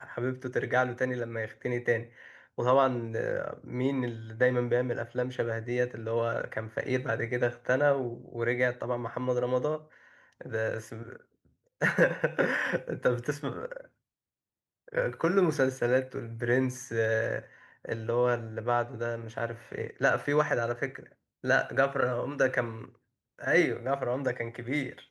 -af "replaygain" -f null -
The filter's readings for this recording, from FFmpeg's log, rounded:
track_gain = +9.4 dB
track_peak = 0.211